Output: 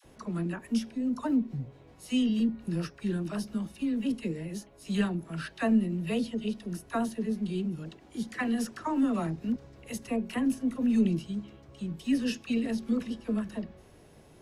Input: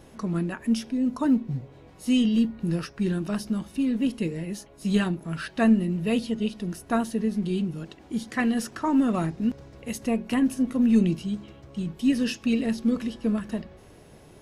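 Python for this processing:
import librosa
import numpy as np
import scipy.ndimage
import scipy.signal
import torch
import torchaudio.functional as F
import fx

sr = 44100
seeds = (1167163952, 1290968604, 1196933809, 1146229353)

y = fx.dispersion(x, sr, late='lows', ms=49.0, hz=700.0)
y = y * 10.0 ** (-5.0 / 20.0)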